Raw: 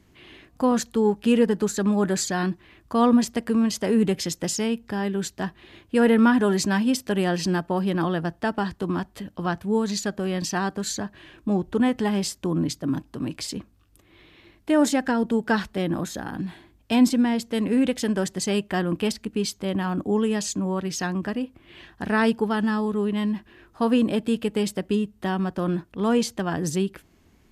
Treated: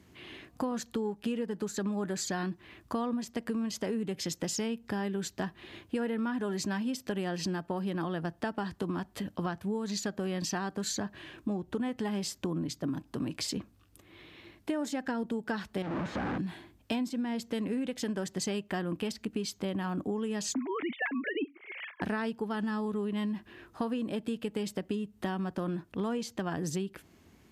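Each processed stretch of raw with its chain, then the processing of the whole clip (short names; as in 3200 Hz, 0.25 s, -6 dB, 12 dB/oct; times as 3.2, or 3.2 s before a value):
15.82–16.38 infinite clipping + LPF 1700 Hz
20.54–22.02 sine-wave speech + bell 2200 Hz +13 dB 0.49 oct
whole clip: HPF 72 Hz; dynamic EQ 9800 Hz, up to -5 dB, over -50 dBFS, Q 2.2; compressor 10:1, threshold -30 dBFS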